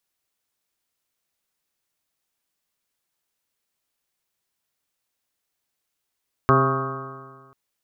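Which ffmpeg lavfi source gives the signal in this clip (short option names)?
-f lavfi -i "aevalsrc='0.126*pow(10,-3*t/1.6)*sin(2*PI*132.09*t)+0.075*pow(10,-3*t/1.6)*sin(2*PI*264.74*t)+0.112*pow(10,-3*t/1.6)*sin(2*PI*398.49*t)+0.0422*pow(10,-3*t/1.6)*sin(2*PI*533.88*t)+0.0562*pow(10,-3*t/1.6)*sin(2*PI*671.45*t)+0.0335*pow(10,-3*t/1.6)*sin(2*PI*811.71*t)+0.0251*pow(10,-3*t/1.6)*sin(2*PI*955.17*t)+0.141*pow(10,-3*t/1.6)*sin(2*PI*1102.29*t)+0.126*pow(10,-3*t/1.6)*sin(2*PI*1253.55*t)+0.0316*pow(10,-3*t/1.6)*sin(2*PI*1409.37*t)+0.0316*pow(10,-3*t/1.6)*sin(2*PI*1570.18*t)':d=1.04:s=44100"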